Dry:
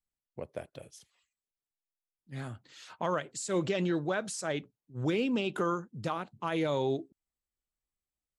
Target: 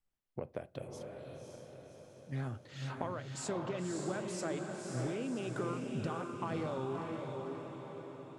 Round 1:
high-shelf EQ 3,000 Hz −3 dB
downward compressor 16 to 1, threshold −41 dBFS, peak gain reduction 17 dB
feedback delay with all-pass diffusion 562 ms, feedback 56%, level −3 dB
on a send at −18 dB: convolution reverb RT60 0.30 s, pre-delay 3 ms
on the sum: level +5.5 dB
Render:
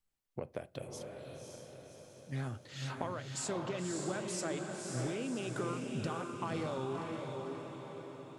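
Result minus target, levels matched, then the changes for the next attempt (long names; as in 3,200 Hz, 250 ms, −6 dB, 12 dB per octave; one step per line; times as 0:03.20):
8,000 Hz band +4.5 dB
change: high-shelf EQ 3,000 Hz −11 dB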